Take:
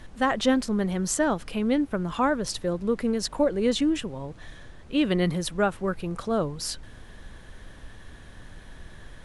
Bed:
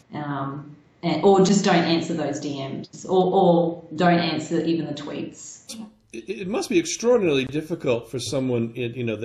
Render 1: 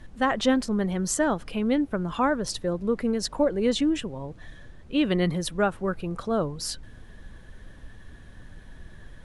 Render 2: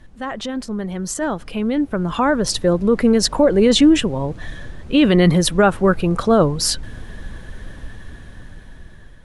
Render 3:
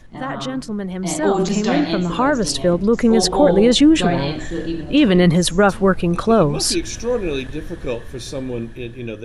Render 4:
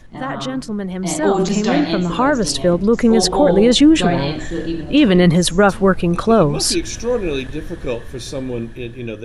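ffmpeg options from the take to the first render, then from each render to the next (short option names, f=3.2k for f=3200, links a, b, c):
-af "afftdn=nr=6:nf=-47"
-af "alimiter=limit=-18dB:level=0:latency=1:release=19,dynaudnorm=f=870:g=5:m=13.5dB"
-filter_complex "[1:a]volume=-2.5dB[a];[0:a][a]amix=inputs=2:normalize=0"
-af "volume=1.5dB,alimiter=limit=-3dB:level=0:latency=1"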